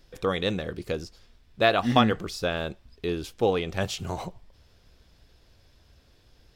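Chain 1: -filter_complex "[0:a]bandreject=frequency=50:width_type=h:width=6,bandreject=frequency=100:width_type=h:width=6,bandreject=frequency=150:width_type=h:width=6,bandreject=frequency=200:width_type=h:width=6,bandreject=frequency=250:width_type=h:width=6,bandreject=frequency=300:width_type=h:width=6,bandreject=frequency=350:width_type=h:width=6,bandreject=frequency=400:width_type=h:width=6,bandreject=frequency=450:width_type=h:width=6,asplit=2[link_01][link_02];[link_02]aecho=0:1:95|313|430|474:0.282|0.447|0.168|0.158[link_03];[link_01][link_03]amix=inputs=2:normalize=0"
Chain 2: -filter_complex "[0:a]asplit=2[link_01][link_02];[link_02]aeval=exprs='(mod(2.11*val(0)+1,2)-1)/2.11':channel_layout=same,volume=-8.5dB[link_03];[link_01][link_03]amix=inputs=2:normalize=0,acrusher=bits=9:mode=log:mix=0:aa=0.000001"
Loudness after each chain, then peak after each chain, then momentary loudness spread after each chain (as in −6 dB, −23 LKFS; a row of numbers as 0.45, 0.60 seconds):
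−26.5, −24.5 LKFS; −3.5, −3.5 dBFS; 18, 13 LU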